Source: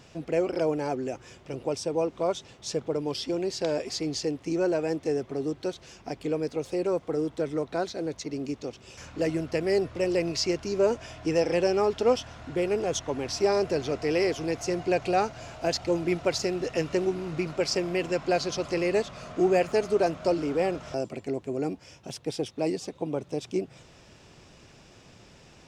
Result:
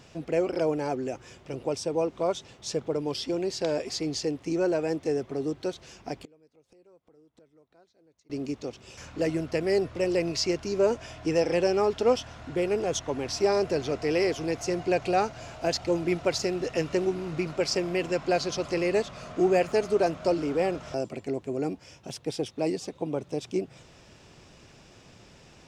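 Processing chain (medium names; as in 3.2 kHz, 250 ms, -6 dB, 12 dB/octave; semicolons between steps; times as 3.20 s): 6.17–8.30 s: inverted gate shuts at -30 dBFS, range -31 dB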